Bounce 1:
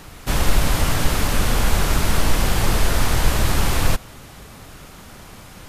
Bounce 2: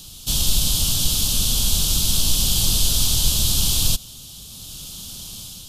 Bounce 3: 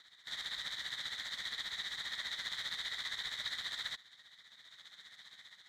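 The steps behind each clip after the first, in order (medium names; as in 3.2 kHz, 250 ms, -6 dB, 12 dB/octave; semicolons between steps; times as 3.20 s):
FFT filter 190 Hz 0 dB, 420 Hz -10 dB, 670 Hz -10 dB, 1.3 kHz -12 dB, 2 kHz -19 dB, 3.2 kHz +12 dB; level rider gain up to 5 dB; trim -4 dB
median filter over 9 samples; two resonant band-passes 2.7 kHz, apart 0.99 oct; tremolo 15 Hz, depth 64%; trim +1.5 dB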